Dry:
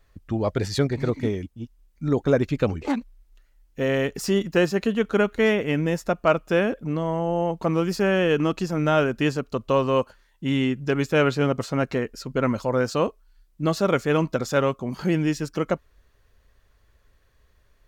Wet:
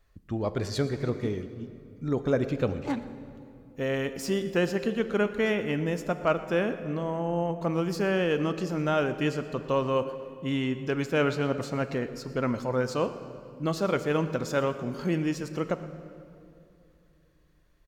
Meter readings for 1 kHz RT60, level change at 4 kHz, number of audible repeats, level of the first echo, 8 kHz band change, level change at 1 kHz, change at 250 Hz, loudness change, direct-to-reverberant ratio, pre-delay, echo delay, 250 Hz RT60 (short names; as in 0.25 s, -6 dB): 2.4 s, -5.0 dB, 1, -18.5 dB, -5.0 dB, -5.0 dB, -5.0 dB, -5.0 dB, 10.5 dB, 14 ms, 0.118 s, 3.4 s